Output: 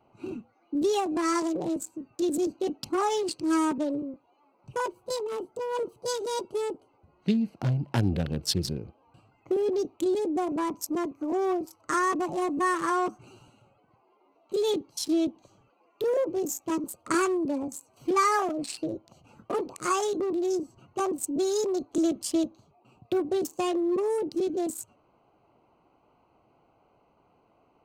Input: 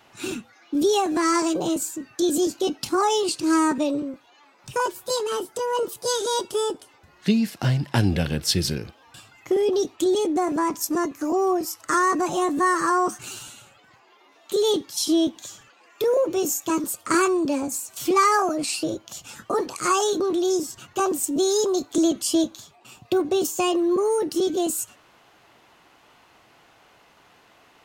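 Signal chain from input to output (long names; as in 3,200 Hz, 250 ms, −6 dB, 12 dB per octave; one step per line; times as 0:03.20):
adaptive Wiener filter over 25 samples
level −4.5 dB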